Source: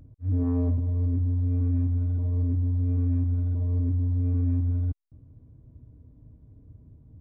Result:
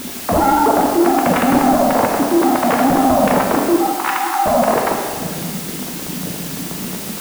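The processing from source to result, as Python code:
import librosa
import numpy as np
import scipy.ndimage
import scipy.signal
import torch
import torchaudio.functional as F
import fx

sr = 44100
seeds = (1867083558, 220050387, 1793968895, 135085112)

p1 = fx.sine_speech(x, sr)
p2 = scipy.signal.sosfilt(scipy.signal.butter(2, 1000.0, 'lowpass', fs=sr, output='sos'), p1)
p3 = fx.over_compress(p2, sr, threshold_db=-25.0, ratio=-0.5)
p4 = p2 + F.gain(torch.from_numpy(p3), -2.5).numpy()
p5 = fx.fold_sine(p4, sr, drive_db=11, ceiling_db=-11.0)
p6 = fx.dmg_noise_colour(p5, sr, seeds[0], colour='white', level_db=-31.0)
p7 = fx.brickwall_highpass(p6, sr, low_hz=740.0, at=(3.76, 4.46))
p8 = p7 + fx.echo_single(p7, sr, ms=552, db=-21.0, dry=0)
p9 = fx.rev_plate(p8, sr, seeds[1], rt60_s=1.7, hf_ratio=1.0, predelay_ms=0, drr_db=0.0)
y = F.gain(torch.from_numpy(p9), -1.0).numpy()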